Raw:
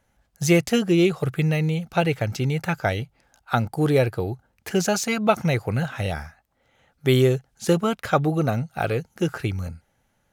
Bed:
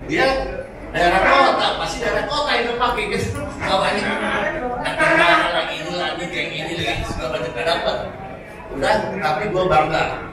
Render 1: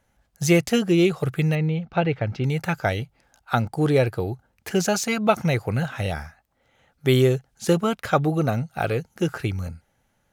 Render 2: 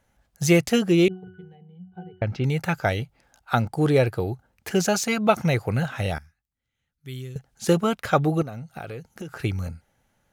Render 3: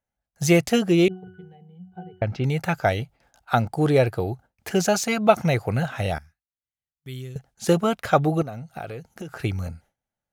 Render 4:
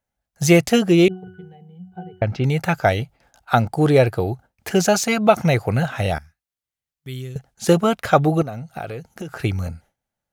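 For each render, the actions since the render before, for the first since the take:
1.55–2.44 air absorption 250 m; 3.61–4.06 bell 13000 Hz -9 dB 0.42 oct
1.08–2.22 octave resonator F#, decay 0.4 s; 6.18–7.36 passive tone stack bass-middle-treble 6-0-2; 8.42–9.44 compressor, threshold -32 dBFS
bell 690 Hz +4.5 dB 0.46 oct; gate with hold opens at -45 dBFS
gain +4 dB; limiter -1 dBFS, peak gain reduction 2.5 dB

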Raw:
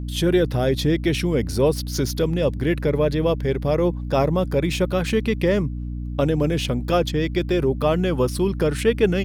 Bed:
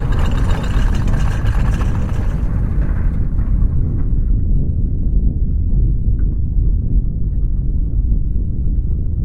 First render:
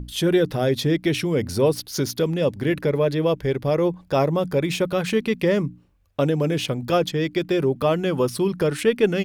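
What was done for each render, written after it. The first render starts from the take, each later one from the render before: notches 60/120/180/240/300 Hz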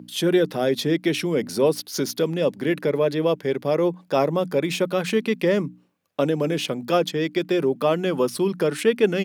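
HPF 170 Hz 24 dB/oct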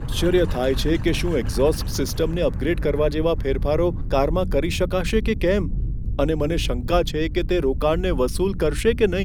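add bed -10.5 dB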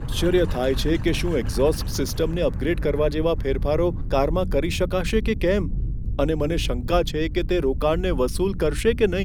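gain -1 dB

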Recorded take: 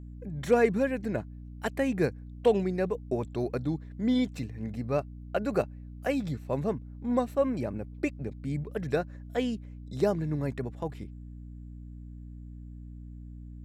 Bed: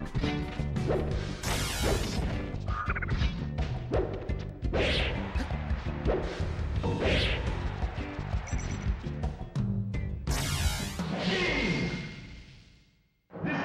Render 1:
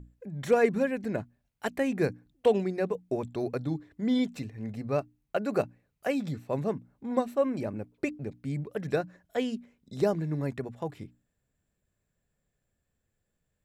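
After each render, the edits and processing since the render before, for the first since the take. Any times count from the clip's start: notches 60/120/180/240/300 Hz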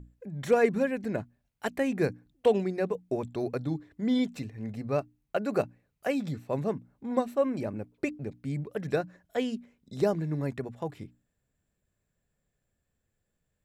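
nothing audible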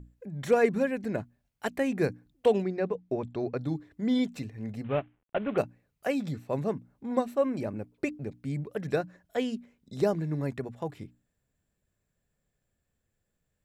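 2.62–3.61 air absorption 120 m; 4.84–5.58 CVSD 16 kbps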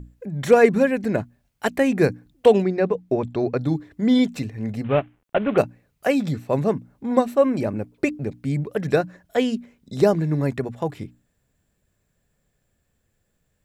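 gain +9 dB

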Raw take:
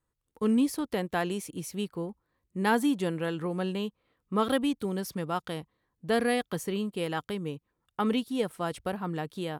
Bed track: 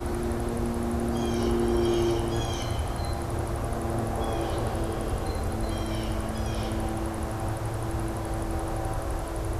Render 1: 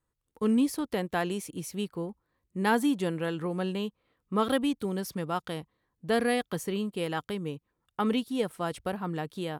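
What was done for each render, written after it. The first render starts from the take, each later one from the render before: nothing audible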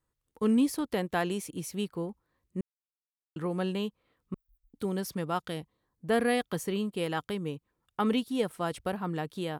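2.61–3.36 mute; 4.34–4.74 inverse Chebyshev band-stop 210–7800 Hz, stop band 80 dB; 5.46–6.33 bell 830 Hz -> 6900 Hz -7 dB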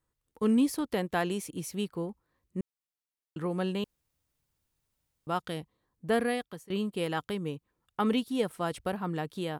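3.84–5.27 room tone; 6.11–6.7 fade out, to -23.5 dB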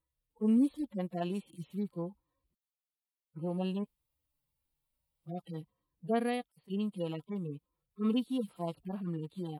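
median-filter separation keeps harmonic; fifteen-band EQ 100 Hz -8 dB, 400 Hz -6 dB, 1600 Hz -9 dB, 6300 Hz -10 dB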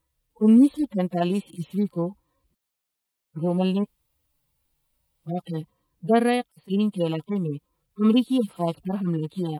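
gain +11.5 dB

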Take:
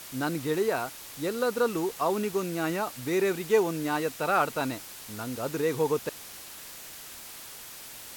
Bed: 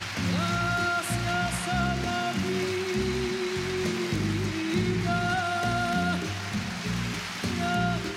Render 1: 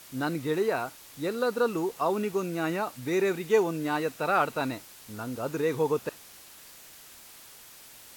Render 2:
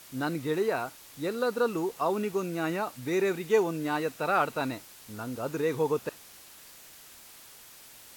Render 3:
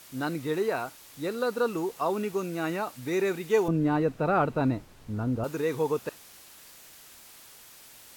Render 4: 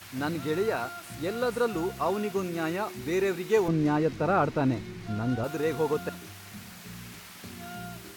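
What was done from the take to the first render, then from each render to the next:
noise print and reduce 6 dB
gain -1 dB
3.68–5.44 tilt -4 dB/oct
add bed -14 dB

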